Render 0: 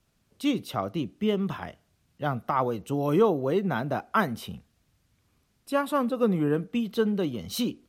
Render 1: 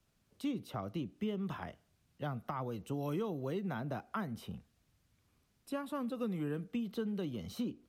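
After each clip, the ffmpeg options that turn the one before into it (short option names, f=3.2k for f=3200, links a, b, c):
-filter_complex "[0:a]acrossover=split=230|1800[a][b][c];[a]acompressor=threshold=-34dB:ratio=4[d];[b]acompressor=threshold=-35dB:ratio=4[e];[c]acompressor=threshold=-49dB:ratio=4[f];[d][e][f]amix=inputs=3:normalize=0,volume=-5dB"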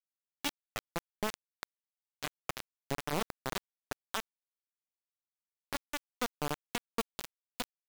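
-af "acrusher=bits=4:mix=0:aa=0.000001,volume=2dB"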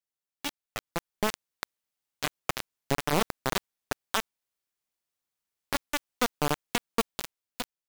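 -af "dynaudnorm=f=280:g=7:m=8dB"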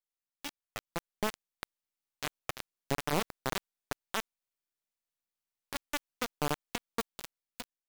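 -af "aeval=exprs='if(lt(val(0),0),0.447*val(0),val(0))':c=same,volume=-4.5dB"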